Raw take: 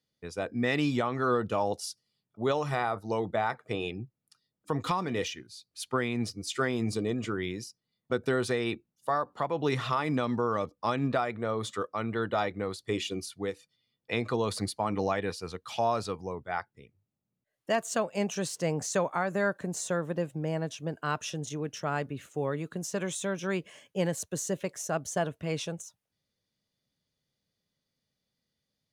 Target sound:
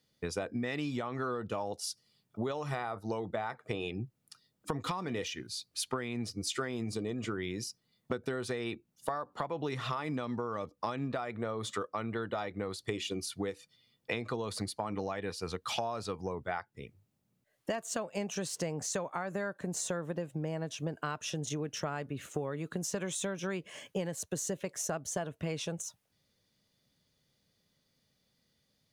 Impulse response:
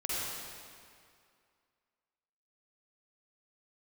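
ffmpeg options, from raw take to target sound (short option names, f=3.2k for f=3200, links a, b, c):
-af "acompressor=threshold=-40dB:ratio=12,volume=8dB"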